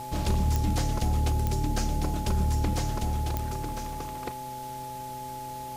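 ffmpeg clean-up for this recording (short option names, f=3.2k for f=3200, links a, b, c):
-af "adeclick=t=4,bandreject=f=128.8:t=h:w=4,bandreject=f=257.6:t=h:w=4,bandreject=f=386.4:t=h:w=4,bandreject=f=515.2:t=h:w=4,bandreject=f=644:t=h:w=4,bandreject=f=850:w=30,afwtdn=0.004"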